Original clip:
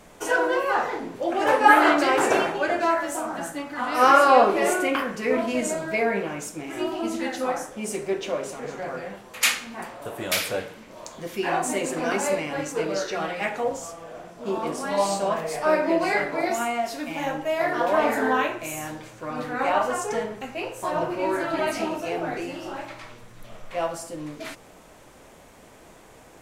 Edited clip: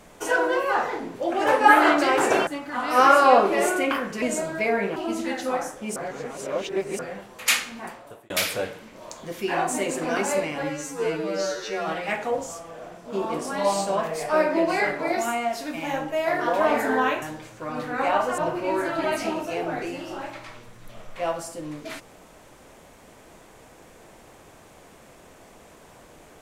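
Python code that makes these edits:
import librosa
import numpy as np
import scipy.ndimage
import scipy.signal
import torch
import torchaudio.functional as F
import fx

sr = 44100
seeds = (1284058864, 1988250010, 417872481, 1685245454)

y = fx.edit(x, sr, fx.cut(start_s=2.47, length_s=1.04),
    fx.cut(start_s=5.26, length_s=0.29),
    fx.cut(start_s=6.29, length_s=0.62),
    fx.reverse_span(start_s=7.91, length_s=1.03),
    fx.fade_out_span(start_s=9.74, length_s=0.51),
    fx.stretch_span(start_s=12.58, length_s=0.62, factor=2.0),
    fx.cut(start_s=18.55, length_s=0.28),
    fx.cut(start_s=19.99, length_s=0.94), tone=tone)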